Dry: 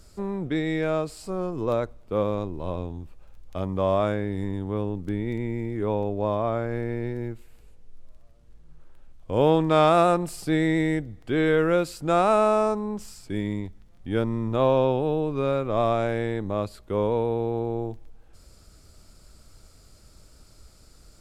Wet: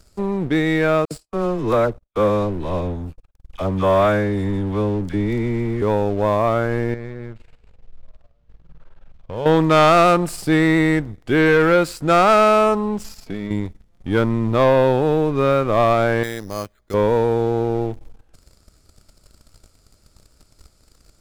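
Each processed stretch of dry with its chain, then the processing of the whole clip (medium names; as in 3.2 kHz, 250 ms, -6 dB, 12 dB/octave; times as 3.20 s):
1.05–5.82 s: phase dispersion lows, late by 63 ms, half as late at 1 kHz + gate -42 dBFS, range -38 dB
6.94–9.46 s: low-pass 3.9 kHz + peaking EQ 300 Hz -12.5 dB 0.4 oct + compression 2:1, threshold -39 dBFS
13.04–13.51 s: peaking EQ 8.4 kHz -13 dB 0.31 oct + compression 10:1, threshold -30 dBFS + comb 4.5 ms, depth 46%
16.23–16.94 s: rippled Chebyshev low-pass 6.9 kHz, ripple 9 dB + careless resampling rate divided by 8×, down filtered, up hold
whole clip: dynamic bell 1.5 kHz, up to +6 dB, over -40 dBFS, Q 1.4; waveshaping leveller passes 2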